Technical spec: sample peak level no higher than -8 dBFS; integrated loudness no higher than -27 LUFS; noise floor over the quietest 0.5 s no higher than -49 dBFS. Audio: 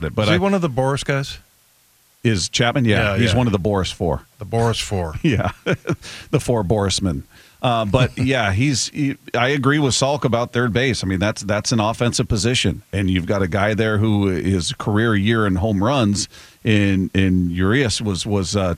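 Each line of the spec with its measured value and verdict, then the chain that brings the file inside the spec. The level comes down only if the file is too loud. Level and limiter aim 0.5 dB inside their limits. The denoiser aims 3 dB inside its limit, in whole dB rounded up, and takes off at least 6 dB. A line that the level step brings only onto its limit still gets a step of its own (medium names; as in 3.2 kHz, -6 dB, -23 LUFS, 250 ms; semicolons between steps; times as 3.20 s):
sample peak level -2.5 dBFS: fail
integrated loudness -19.0 LUFS: fail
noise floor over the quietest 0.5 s -56 dBFS: pass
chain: trim -8.5 dB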